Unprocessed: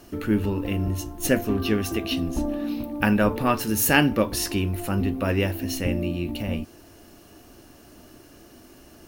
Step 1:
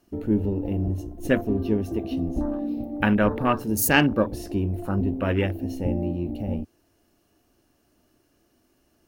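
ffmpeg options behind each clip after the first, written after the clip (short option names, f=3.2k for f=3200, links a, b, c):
-af "afwtdn=0.0316"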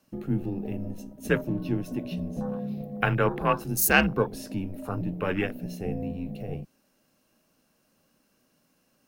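-af "highpass=f=380:p=1,afreqshift=-86"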